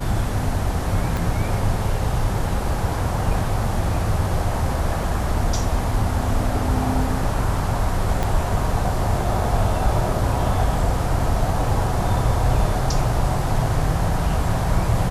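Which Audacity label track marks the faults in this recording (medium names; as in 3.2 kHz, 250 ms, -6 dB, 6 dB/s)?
1.170000	1.170000	pop
8.230000	8.230000	pop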